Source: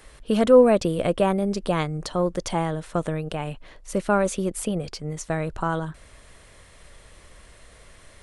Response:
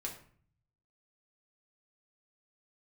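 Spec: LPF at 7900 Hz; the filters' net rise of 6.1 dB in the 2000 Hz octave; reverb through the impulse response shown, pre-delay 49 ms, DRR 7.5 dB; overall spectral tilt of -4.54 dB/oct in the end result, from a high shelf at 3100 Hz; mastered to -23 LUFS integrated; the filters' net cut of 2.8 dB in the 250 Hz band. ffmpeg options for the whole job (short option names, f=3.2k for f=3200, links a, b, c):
-filter_complex "[0:a]lowpass=7.9k,equalizer=f=250:t=o:g=-4,equalizer=f=2k:t=o:g=5.5,highshelf=f=3.1k:g=8,asplit=2[a][b];[1:a]atrim=start_sample=2205,adelay=49[c];[b][c]afir=irnorm=-1:irlink=0,volume=-7dB[d];[a][d]amix=inputs=2:normalize=0"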